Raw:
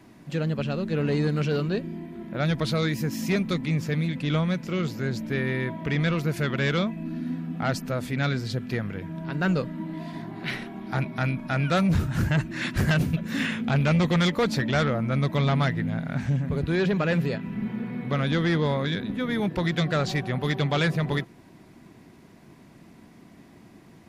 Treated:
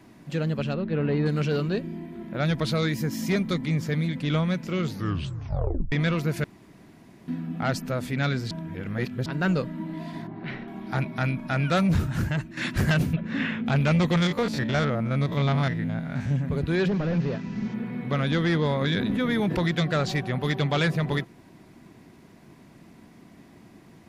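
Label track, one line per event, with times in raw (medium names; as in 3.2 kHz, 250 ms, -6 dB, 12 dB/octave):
0.740000	1.260000	Gaussian low-pass sigma 2.4 samples
2.950000	4.250000	band-stop 2.6 kHz, Q 11
4.850000	4.850000	tape stop 1.07 s
6.440000	7.280000	room tone
8.510000	9.260000	reverse
10.270000	10.680000	tape spacing loss at 10 kHz 31 dB
12.060000	12.570000	fade out, to -9 dB
13.130000	13.660000	low-pass 2.9 kHz
14.170000	16.310000	spectrogram pixelated in time every 50 ms
16.880000	17.740000	one-bit delta coder 32 kbps, step -46 dBFS
18.810000	19.720000	level flattener amount 70%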